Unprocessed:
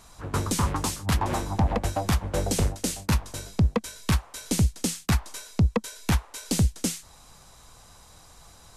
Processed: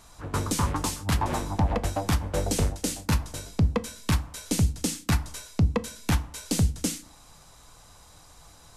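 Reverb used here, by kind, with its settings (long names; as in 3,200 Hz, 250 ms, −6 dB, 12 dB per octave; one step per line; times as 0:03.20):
feedback delay network reverb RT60 0.44 s, low-frequency decay 1.35×, high-frequency decay 0.75×, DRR 13 dB
level −1 dB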